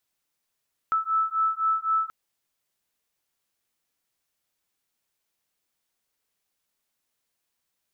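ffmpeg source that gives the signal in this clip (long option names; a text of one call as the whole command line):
ffmpeg -f lavfi -i "aevalsrc='0.0562*(sin(2*PI*1310*t)+sin(2*PI*1313.9*t))':duration=1.18:sample_rate=44100" out.wav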